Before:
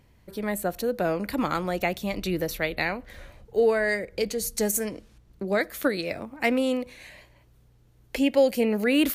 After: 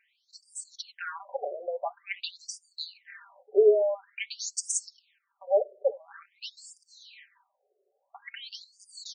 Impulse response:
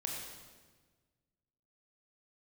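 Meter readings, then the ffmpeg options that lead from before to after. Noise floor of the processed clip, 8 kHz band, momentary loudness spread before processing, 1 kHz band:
-78 dBFS, -0.5 dB, 12 LU, -8.0 dB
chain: -af "aecho=1:1:5:0.83,afreqshift=-25,afftfilt=real='re*between(b*sr/1024,510*pow(6700/510,0.5+0.5*sin(2*PI*0.48*pts/sr))/1.41,510*pow(6700/510,0.5+0.5*sin(2*PI*0.48*pts/sr))*1.41)':imag='im*between(b*sr/1024,510*pow(6700/510,0.5+0.5*sin(2*PI*0.48*pts/sr))/1.41,510*pow(6700/510,0.5+0.5*sin(2*PI*0.48*pts/sr))*1.41)':win_size=1024:overlap=0.75"

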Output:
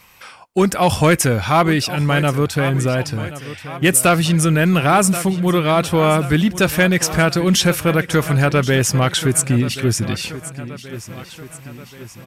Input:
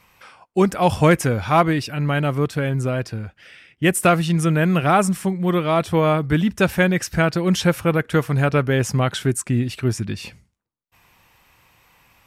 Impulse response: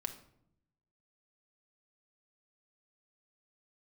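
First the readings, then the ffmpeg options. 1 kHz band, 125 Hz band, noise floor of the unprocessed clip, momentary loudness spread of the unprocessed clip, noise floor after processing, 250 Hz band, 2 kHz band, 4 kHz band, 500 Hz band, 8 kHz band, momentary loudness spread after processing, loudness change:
+2.5 dB, +3.0 dB, -65 dBFS, 7 LU, -41 dBFS, +3.0 dB, +4.5 dB, +8.0 dB, +2.5 dB, +10.0 dB, 16 LU, +3.5 dB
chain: -filter_complex "[0:a]aecho=1:1:1079|2158|3237|4316|5395:0.158|0.0824|0.0429|0.0223|0.0116,asplit=2[a][b];[b]alimiter=limit=-11.5dB:level=0:latency=1:release=24,volume=-2dB[c];[a][c]amix=inputs=2:normalize=0,asoftclip=type=tanh:threshold=-3dB,highshelf=f=2.7k:g=7,volume=-1dB"

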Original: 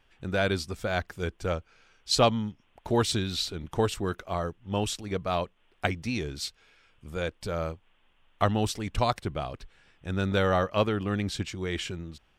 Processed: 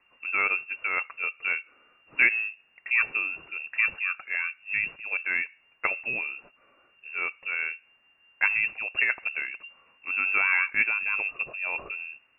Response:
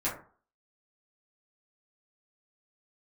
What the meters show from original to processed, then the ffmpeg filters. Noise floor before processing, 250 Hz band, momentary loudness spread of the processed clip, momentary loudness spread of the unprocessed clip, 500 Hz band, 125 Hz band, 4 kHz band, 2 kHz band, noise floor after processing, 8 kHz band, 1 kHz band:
-66 dBFS, -20.5 dB, 12 LU, 12 LU, -17.5 dB, under -25 dB, under -10 dB, +12.5 dB, -64 dBFS, under -40 dB, -6.5 dB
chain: -filter_complex "[0:a]asplit=2[a][b];[1:a]atrim=start_sample=2205[c];[b][c]afir=irnorm=-1:irlink=0,volume=-25.5dB[d];[a][d]amix=inputs=2:normalize=0,lowpass=f=2.4k:t=q:w=0.5098,lowpass=f=2.4k:t=q:w=0.6013,lowpass=f=2.4k:t=q:w=0.9,lowpass=f=2.4k:t=q:w=2.563,afreqshift=-2800"

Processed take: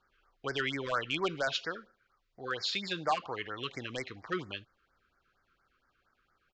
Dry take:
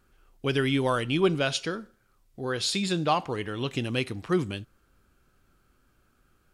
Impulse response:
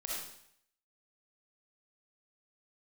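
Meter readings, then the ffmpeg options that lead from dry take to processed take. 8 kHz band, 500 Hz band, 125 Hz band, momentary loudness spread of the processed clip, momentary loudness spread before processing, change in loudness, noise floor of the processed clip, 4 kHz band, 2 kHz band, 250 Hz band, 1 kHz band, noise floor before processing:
-12.0 dB, -9.0 dB, -15.0 dB, 10 LU, 10 LU, -7.0 dB, -78 dBFS, -4.5 dB, -3.0 dB, -13.0 dB, -4.5 dB, -67 dBFS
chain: -filter_complex "[0:a]acrossover=split=590 4500:gain=0.178 1 0.0794[a][b][c];[a][b][c]amix=inputs=3:normalize=0,aresample=16000,volume=22.5dB,asoftclip=hard,volume=-22.5dB,aresample=44100,afftfilt=real='re*(1-between(b*sr/1024,690*pow(3300/690,0.5+0.5*sin(2*PI*4.3*pts/sr))/1.41,690*pow(3300/690,0.5+0.5*sin(2*PI*4.3*pts/sr))*1.41))':imag='im*(1-between(b*sr/1024,690*pow(3300/690,0.5+0.5*sin(2*PI*4.3*pts/sr))/1.41,690*pow(3300/690,0.5+0.5*sin(2*PI*4.3*pts/sr))*1.41))':win_size=1024:overlap=0.75"

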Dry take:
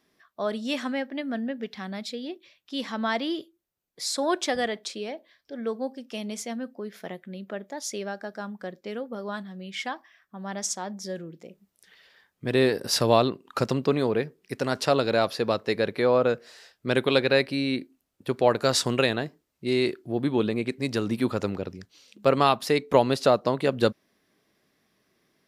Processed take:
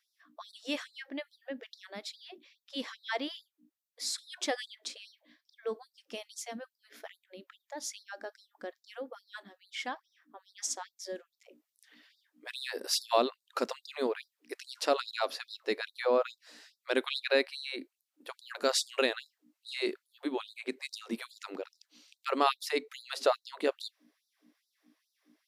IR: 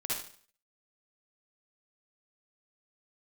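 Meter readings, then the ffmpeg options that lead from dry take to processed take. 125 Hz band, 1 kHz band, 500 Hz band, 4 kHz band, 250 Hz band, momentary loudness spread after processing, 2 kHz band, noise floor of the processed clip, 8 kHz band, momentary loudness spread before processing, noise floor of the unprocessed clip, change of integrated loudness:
under -30 dB, -7.5 dB, -9.5 dB, -5.0 dB, -13.5 dB, 20 LU, -6.5 dB, under -85 dBFS, -5.0 dB, 15 LU, -74 dBFS, -8.0 dB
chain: -af "aeval=exprs='val(0)+0.00562*(sin(2*PI*60*n/s)+sin(2*PI*2*60*n/s)/2+sin(2*PI*3*60*n/s)/3+sin(2*PI*4*60*n/s)/4+sin(2*PI*5*60*n/s)/5)':c=same,afftfilt=real='re*gte(b*sr/1024,210*pow(3700/210,0.5+0.5*sin(2*PI*2.4*pts/sr)))':imag='im*gte(b*sr/1024,210*pow(3700/210,0.5+0.5*sin(2*PI*2.4*pts/sr)))':win_size=1024:overlap=0.75,volume=-5dB"

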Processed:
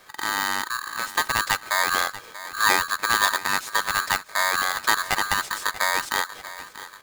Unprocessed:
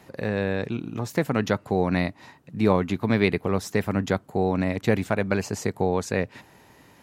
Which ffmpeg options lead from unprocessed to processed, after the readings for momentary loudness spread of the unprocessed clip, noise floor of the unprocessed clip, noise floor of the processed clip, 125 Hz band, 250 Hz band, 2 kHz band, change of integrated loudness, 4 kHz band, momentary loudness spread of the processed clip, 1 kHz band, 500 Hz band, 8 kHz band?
7 LU, -55 dBFS, -45 dBFS, -18.0 dB, -17.5 dB, +10.0 dB, +2.5 dB, +13.5 dB, 10 LU, +8.0 dB, -11.5 dB, +13.0 dB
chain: -filter_complex "[0:a]asplit=2[a][b];[b]adelay=637,lowpass=f=5k:p=1,volume=-15dB,asplit=2[c][d];[d]adelay=637,lowpass=f=5k:p=1,volume=0.5,asplit=2[e][f];[f]adelay=637,lowpass=f=5k:p=1,volume=0.5,asplit=2[g][h];[h]adelay=637,lowpass=f=5k:p=1,volume=0.5,asplit=2[i][j];[j]adelay=637,lowpass=f=5k:p=1,volume=0.5[k];[c][e][g][i][k]amix=inputs=5:normalize=0[l];[a][l]amix=inputs=2:normalize=0,aeval=exprs='val(0)*sgn(sin(2*PI*1400*n/s))':c=same"

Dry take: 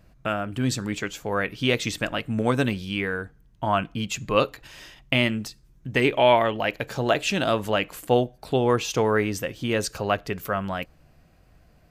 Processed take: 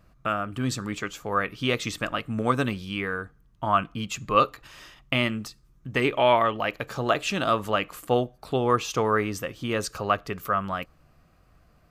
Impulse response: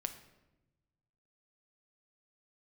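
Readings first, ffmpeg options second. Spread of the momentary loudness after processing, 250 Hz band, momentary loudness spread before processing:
10 LU, -3.0 dB, 10 LU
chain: -af "equalizer=f=1.2k:w=5.1:g=11.5,volume=-3dB"

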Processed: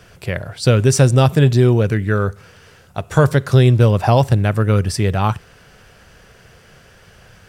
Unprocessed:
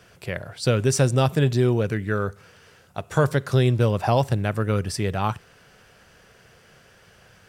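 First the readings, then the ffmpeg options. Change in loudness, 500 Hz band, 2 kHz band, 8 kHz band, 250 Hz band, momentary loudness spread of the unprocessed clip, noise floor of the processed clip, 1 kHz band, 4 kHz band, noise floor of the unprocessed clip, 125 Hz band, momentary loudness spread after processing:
+7.5 dB, +6.0 dB, +5.5 dB, +5.5 dB, +7.0 dB, 13 LU, -48 dBFS, +5.5 dB, +5.5 dB, -54 dBFS, +8.5 dB, 13 LU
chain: -af "lowshelf=f=83:g=10,volume=5.5dB"

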